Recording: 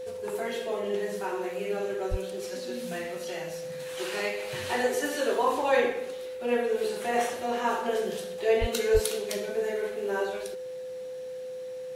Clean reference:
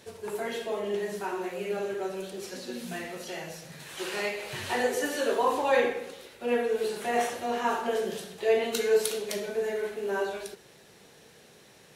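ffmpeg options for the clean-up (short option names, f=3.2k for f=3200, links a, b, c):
-filter_complex "[0:a]bandreject=f=510:w=30,asplit=3[a][b][c];[a]afade=t=out:st=2.1:d=0.02[d];[b]highpass=f=140:w=0.5412,highpass=f=140:w=1.3066,afade=t=in:st=2.1:d=0.02,afade=t=out:st=2.22:d=0.02[e];[c]afade=t=in:st=2.22:d=0.02[f];[d][e][f]amix=inputs=3:normalize=0,asplit=3[g][h][i];[g]afade=t=out:st=8.6:d=0.02[j];[h]highpass=f=140:w=0.5412,highpass=f=140:w=1.3066,afade=t=in:st=8.6:d=0.02,afade=t=out:st=8.72:d=0.02[k];[i]afade=t=in:st=8.72:d=0.02[l];[j][k][l]amix=inputs=3:normalize=0,asplit=3[m][n][o];[m]afade=t=out:st=8.93:d=0.02[p];[n]highpass=f=140:w=0.5412,highpass=f=140:w=1.3066,afade=t=in:st=8.93:d=0.02,afade=t=out:st=9.05:d=0.02[q];[o]afade=t=in:st=9.05:d=0.02[r];[p][q][r]amix=inputs=3:normalize=0"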